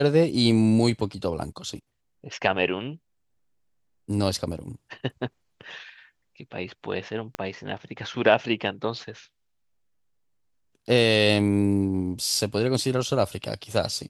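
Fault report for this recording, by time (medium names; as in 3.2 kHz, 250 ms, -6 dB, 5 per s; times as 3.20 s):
7.35 s: pop -15 dBFS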